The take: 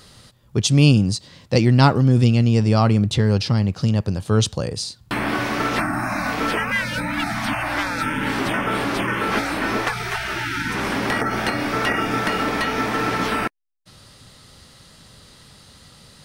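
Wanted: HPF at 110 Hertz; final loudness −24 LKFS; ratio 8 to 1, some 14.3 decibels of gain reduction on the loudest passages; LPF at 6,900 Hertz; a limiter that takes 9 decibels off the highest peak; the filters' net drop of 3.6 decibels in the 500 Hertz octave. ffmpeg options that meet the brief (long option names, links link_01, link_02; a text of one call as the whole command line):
ffmpeg -i in.wav -af "highpass=110,lowpass=6900,equalizer=frequency=500:width_type=o:gain=-4.5,acompressor=threshold=-26dB:ratio=8,volume=6.5dB,alimiter=limit=-14.5dB:level=0:latency=1" out.wav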